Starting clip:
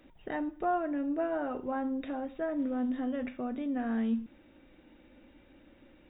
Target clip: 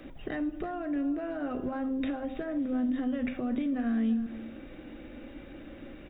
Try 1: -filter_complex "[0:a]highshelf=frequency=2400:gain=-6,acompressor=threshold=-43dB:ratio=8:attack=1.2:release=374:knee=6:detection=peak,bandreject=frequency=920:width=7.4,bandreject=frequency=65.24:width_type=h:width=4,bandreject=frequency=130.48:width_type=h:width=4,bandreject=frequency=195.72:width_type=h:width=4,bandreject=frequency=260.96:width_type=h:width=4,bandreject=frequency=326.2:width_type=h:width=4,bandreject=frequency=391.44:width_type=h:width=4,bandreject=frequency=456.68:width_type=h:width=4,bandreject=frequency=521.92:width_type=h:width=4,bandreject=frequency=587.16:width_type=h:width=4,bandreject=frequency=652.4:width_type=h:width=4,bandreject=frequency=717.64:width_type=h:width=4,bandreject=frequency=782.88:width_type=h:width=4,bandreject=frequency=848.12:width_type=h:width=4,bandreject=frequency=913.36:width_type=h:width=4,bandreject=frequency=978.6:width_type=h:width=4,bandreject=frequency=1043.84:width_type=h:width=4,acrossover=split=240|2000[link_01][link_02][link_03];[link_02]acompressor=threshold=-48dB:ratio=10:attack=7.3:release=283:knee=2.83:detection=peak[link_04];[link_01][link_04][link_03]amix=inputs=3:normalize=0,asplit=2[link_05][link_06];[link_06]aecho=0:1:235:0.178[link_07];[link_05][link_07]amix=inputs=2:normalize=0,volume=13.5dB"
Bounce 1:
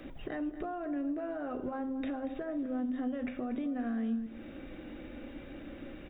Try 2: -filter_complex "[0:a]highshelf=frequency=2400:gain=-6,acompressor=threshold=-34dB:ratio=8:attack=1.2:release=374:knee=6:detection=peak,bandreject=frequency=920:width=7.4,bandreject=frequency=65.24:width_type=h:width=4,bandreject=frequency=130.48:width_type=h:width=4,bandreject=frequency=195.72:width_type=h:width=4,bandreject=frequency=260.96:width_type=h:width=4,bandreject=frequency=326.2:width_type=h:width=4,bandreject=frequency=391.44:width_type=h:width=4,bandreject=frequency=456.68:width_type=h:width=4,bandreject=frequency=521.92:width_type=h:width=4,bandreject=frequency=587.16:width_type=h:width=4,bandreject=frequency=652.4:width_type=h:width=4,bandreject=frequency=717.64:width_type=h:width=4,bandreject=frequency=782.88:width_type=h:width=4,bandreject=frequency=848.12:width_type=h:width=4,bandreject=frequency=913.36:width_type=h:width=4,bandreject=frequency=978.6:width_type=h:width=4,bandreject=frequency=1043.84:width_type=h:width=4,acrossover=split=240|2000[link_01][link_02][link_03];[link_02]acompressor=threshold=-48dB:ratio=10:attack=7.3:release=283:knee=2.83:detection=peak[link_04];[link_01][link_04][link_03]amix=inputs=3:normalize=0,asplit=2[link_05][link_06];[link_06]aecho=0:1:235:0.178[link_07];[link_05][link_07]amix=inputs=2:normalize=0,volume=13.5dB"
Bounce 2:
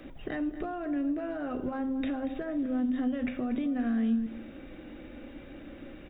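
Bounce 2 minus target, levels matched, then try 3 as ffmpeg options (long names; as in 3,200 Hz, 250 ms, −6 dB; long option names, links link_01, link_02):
echo 100 ms early
-filter_complex "[0:a]highshelf=frequency=2400:gain=-6,acompressor=threshold=-34dB:ratio=8:attack=1.2:release=374:knee=6:detection=peak,bandreject=frequency=920:width=7.4,bandreject=frequency=65.24:width_type=h:width=4,bandreject=frequency=130.48:width_type=h:width=4,bandreject=frequency=195.72:width_type=h:width=4,bandreject=frequency=260.96:width_type=h:width=4,bandreject=frequency=326.2:width_type=h:width=4,bandreject=frequency=391.44:width_type=h:width=4,bandreject=frequency=456.68:width_type=h:width=4,bandreject=frequency=521.92:width_type=h:width=4,bandreject=frequency=587.16:width_type=h:width=4,bandreject=frequency=652.4:width_type=h:width=4,bandreject=frequency=717.64:width_type=h:width=4,bandreject=frequency=782.88:width_type=h:width=4,bandreject=frequency=848.12:width_type=h:width=4,bandreject=frequency=913.36:width_type=h:width=4,bandreject=frequency=978.6:width_type=h:width=4,bandreject=frequency=1043.84:width_type=h:width=4,acrossover=split=240|2000[link_01][link_02][link_03];[link_02]acompressor=threshold=-48dB:ratio=10:attack=7.3:release=283:knee=2.83:detection=peak[link_04];[link_01][link_04][link_03]amix=inputs=3:normalize=0,asplit=2[link_05][link_06];[link_06]aecho=0:1:335:0.178[link_07];[link_05][link_07]amix=inputs=2:normalize=0,volume=13.5dB"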